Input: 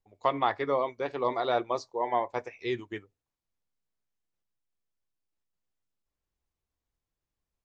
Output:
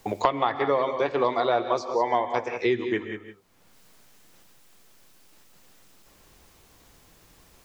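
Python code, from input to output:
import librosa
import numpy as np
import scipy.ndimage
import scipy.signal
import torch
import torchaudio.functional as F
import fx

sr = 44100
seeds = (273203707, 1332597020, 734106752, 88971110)

y = x + 10.0 ** (-14.0 / 20.0) * np.pad(x, (int(186 * sr / 1000.0), 0))[:len(x)]
y = fx.rev_gated(y, sr, seeds[0], gate_ms=180, shape='rising', drr_db=12.0)
y = fx.band_squash(y, sr, depth_pct=100)
y = y * librosa.db_to_amplitude(4.0)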